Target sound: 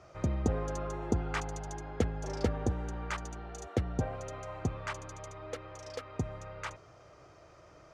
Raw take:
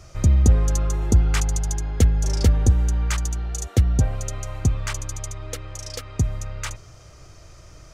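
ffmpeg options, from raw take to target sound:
ffmpeg -i in.wav -af "bandpass=frequency=700:width_type=q:width=0.62:csg=0,volume=-2dB" out.wav

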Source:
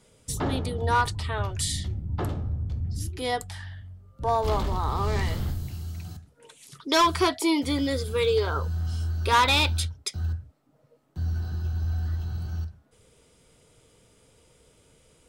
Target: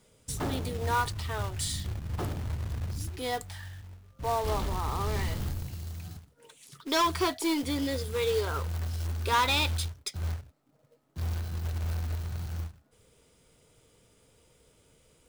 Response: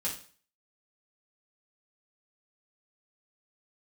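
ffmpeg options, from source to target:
-af "aeval=exprs='0.168*(cos(1*acos(clip(val(0)/0.168,-1,1)))-cos(1*PI/2))+0.00188*(cos(3*acos(clip(val(0)/0.168,-1,1)))-cos(3*PI/2))+0.00119*(cos(4*acos(clip(val(0)/0.168,-1,1)))-cos(4*PI/2))+0.00668*(cos(5*acos(clip(val(0)/0.168,-1,1)))-cos(5*PI/2))+0.00188*(cos(8*acos(clip(val(0)/0.168,-1,1)))-cos(8*PI/2))':channel_layout=same,acrusher=bits=3:mode=log:mix=0:aa=0.000001,volume=-5dB"

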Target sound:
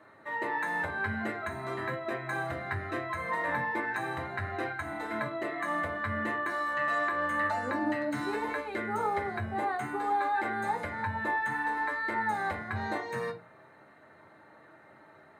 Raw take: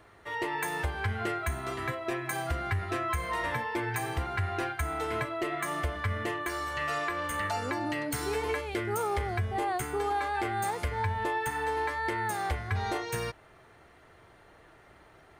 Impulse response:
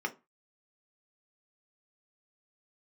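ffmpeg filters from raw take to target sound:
-filter_complex "[0:a]acrossover=split=7500[link_01][link_02];[link_02]acompressor=threshold=-51dB:ratio=4:attack=1:release=60[link_03];[link_01][link_03]amix=inputs=2:normalize=0[link_04];[1:a]atrim=start_sample=2205,asetrate=31311,aresample=44100[link_05];[link_04][link_05]afir=irnorm=-1:irlink=0,volume=-6.5dB"

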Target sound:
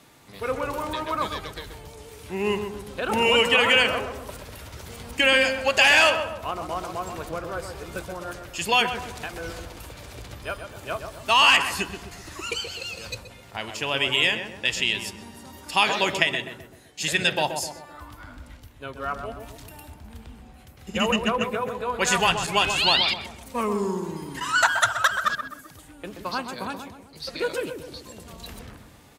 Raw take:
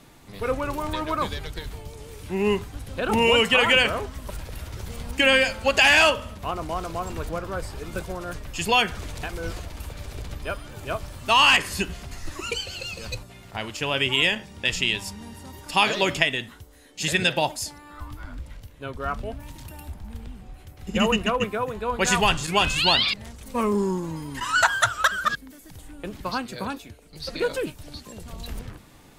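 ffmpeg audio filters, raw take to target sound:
ffmpeg -i in.wav -filter_complex "[0:a]highpass=53,lowshelf=frequency=340:gain=-6.5,asplit=2[link_01][link_02];[link_02]adelay=128,lowpass=frequency=1300:poles=1,volume=-6dB,asplit=2[link_03][link_04];[link_04]adelay=128,lowpass=frequency=1300:poles=1,volume=0.52,asplit=2[link_05][link_06];[link_06]adelay=128,lowpass=frequency=1300:poles=1,volume=0.52,asplit=2[link_07][link_08];[link_08]adelay=128,lowpass=frequency=1300:poles=1,volume=0.52,asplit=2[link_09][link_10];[link_10]adelay=128,lowpass=frequency=1300:poles=1,volume=0.52,asplit=2[link_11][link_12];[link_12]adelay=128,lowpass=frequency=1300:poles=1,volume=0.52[link_13];[link_03][link_05][link_07][link_09][link_11][link_13]amix=inputs=6:normalize=0[link_14];[link_01][link_14]amix=inputs=2:normalize=0" out.wav

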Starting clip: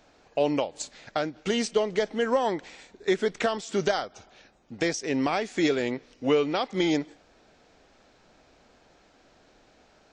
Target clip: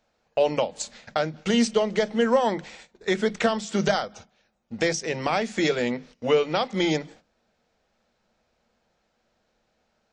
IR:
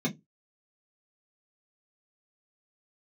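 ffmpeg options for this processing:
-filter_complex "[0:a]agate=range=-15dB:threshold=-48dB:ratio=16:detection=peak,equalizer=frequency=300:width=4.5:gain=-6.5,asplit=2[link_01][link_02];[1:a]atrim=start_sample=2205[link_03];[link_02][link_03]afir=irnorm=-1:irlink=0,volume=-21dB[link_04];[link_01][link_04]amix=inputs=2:normalize=0,volume=3.5dB"

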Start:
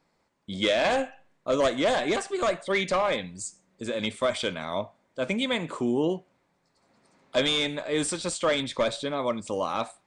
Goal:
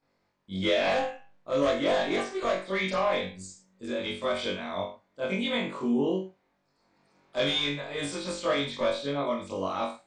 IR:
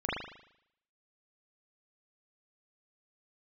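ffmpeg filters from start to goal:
-filter_complex "[1:a]atrim=start_sample=2205,afade=type=out:start_time=0.33:duration=0.01,atrim=end_sample=14994,asetrate=79380,aresample=44100[link_01];[0:a][link_01]afir=irnorm=-1:irlink=0,volume=-5.5dB"

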